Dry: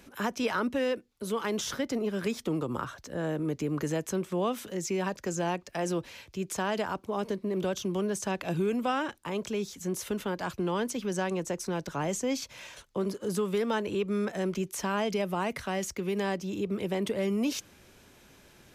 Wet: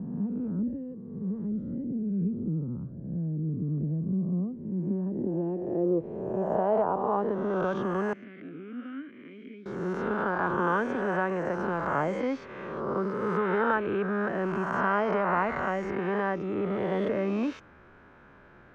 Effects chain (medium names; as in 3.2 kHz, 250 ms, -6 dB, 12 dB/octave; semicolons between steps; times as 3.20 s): reverse spectral sustain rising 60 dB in 1.73 s; low-pass sweep 180 Hz -> 1.4 kHz, 4.56–7.78 s; 8.13–9.66 s: vowel filter i; trim -1.5 dB